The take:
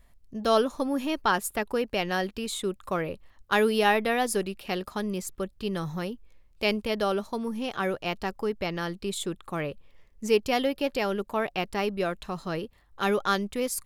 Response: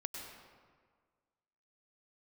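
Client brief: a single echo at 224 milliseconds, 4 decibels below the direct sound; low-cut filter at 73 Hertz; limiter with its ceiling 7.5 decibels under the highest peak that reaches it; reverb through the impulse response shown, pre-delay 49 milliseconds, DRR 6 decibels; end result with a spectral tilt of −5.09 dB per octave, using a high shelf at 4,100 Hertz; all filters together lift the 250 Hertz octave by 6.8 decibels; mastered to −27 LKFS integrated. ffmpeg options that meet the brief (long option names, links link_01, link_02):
-filter_complex "[0:a]highpass=73,equalizer=frequency=250:width_type=o:gain=8.5,highshelf=frequency=4100:gain=-5,alimiter=limit=-16.5dB:level=0:latency=1,aecho=1:1:224:0.631,asplit=2[link_01][link_02];[1:a]atrim=start_sample=2205,adelay=49[link_03];[link_02][link_03]afir=irnorm=-1:irlink=0,volume=-5.5dB[link_04];[link_01][link_04]amix=inputs=2:normalize=0,volume=-1.5dB"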